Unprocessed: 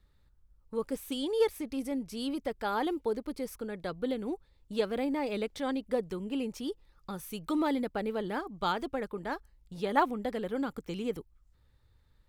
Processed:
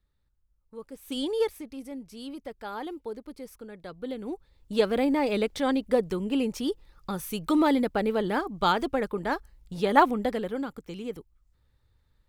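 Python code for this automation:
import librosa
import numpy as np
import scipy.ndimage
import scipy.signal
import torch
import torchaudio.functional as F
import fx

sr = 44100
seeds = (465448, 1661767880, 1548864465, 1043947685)

y = fx.gain(x, sr, db=fx.line((0.97, -8.5), (1.18, 4.5), (1.75, -5.0), (3.88, -5.0), (4.83, 7.0), (10.23, 7.0), (10.74, -1.5)))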